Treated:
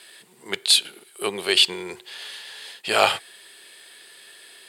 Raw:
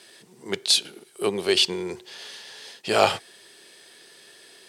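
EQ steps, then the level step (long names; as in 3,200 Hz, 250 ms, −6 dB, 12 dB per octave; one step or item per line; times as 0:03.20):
tilt shelving filter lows −6.5 dB, about 750 Hz
parametric band 5,800 Hz −12 dB 0.52 octaves
0.0 dB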